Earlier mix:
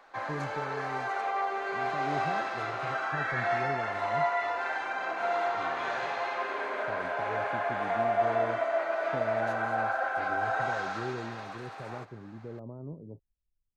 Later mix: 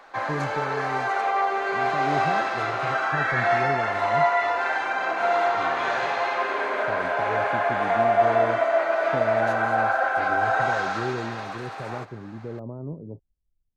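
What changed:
speech +7.0 dB
background +7.5 dB

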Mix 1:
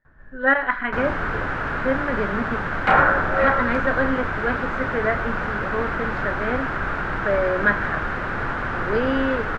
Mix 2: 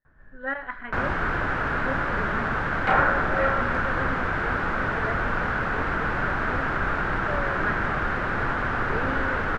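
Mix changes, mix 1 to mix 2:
speech −12.0 dB
first sound −5.0 dB

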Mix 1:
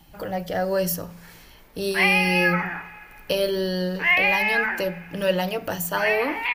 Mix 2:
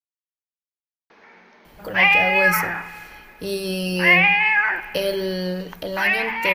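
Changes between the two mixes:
speech: entry +1.65 s
background +4.5 dB

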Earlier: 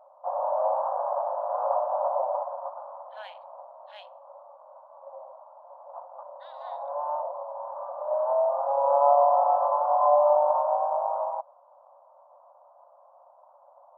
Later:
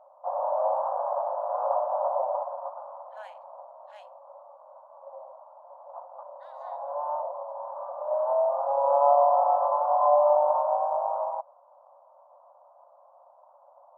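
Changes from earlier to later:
speech: add high shelf with overshoot 5,200 Hz +13.5 dB, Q 3
master: add low-pass filter 2,400 Hz 6 dB per octave

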